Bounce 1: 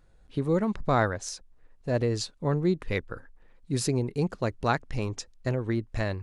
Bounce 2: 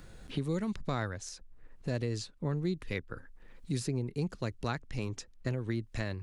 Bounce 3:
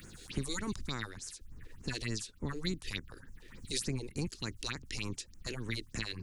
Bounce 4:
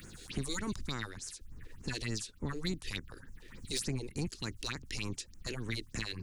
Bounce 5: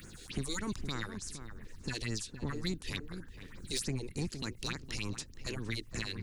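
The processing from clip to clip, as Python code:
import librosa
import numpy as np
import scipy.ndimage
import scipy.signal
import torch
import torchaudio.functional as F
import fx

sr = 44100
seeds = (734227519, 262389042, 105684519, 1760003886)

y1 = fx.peak_eq(x, sr, hz=740.0, db=-6.5, octaves=2.0)
y1 = fx.band_squash(y1, sr, depth_pct=70)
y1 = y1 * librosa.db_to_amplitude(-5.0)
y2 = fx.spec_clip(y1, sr, under_db=21)
y2 = fx.phaser_stages(y2, sr, stages=4, low_hz=150.0, high_hz=3900.0, hz=3.4, feedback_pct=40)
y2 = fx.peak_eq(y2, sr, hz=640.0, db=-15.0, octaves=1.3)
y2 = y2 * librosa.db_to_amplitude(1.0)
y3 = 10.0 ** (-25.5 / 20.0) * np.tanh(y2 / 10.0 ** (-25.5 / 20.0))
y3 = y3 * librosa.db_to_amplitude(1.0)
y4 = fx.echo_filtered(y3, sr, ms=464, feedback_pct=20, hz=1300.0, wet_db=-8.5)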